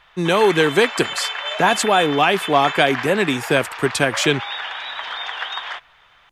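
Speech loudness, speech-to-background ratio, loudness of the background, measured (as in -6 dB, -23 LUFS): -18.0 LUFS, 8.5 dB, -26.5 LUFS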